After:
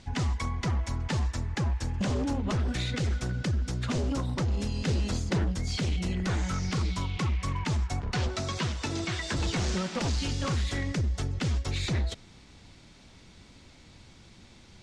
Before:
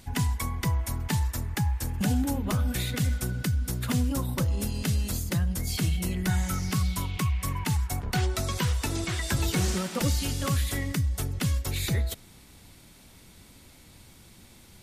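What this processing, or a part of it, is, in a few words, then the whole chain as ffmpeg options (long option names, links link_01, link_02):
synthesiser wavefolder: -filter_complex "[0:a]aeval=exprs='0.0708*(abs(mod(val(0)/0.0708+3,4)-2)-1)':channel_layout=same,lowpass=frequency=6600:width=0.5412,lowpass=frequency=6600:width=1.3066,asettb=1/sr,asplit=3[link_01][link_02][link_03];[link_01]atrim=end=4.874[link_04];[link_02]atrim=start=4.87:end=5.5,asetpts=PTS-STARTPTS,afade=type=in:duration=0.004:curve=qsin,afade=type=out:start_time=0.626:duration=0.004:curve=qsin,equalizer=frequency=610:width=0.34:gain=5[link_05];[link_03]atrim=start=5.496[link_06];[link_04][link_05]acrossfade=duration=0.004:curve1=hsin:curve2=qsin[link_07];[link_07][link_06]acrossfade=duration=0.004:curve1=qsin:curve2=hsin,asettb=1/sr,asplit=3[link_08][link_09][link_10];[link_08]atrim=end=8.284[link_11];[link_09]atrim=start=8.28:end=9.35,asetpts=PTS-STARTPTS,afade=type=in:duration=0.004:curve=qsin,afade=type=out:start_time=1.066:duration=0.004:curve=qsin,highpass=91[link_12];[link_10]atrim=start=9.346[link_13];[link_11][link_12]acrossfade=duration=0.004:curve1=hsin:curve2=qsin[link_14];[link_14][link_13]acrossfade=duration=0.004:curve1=qsin:curve2=hsin"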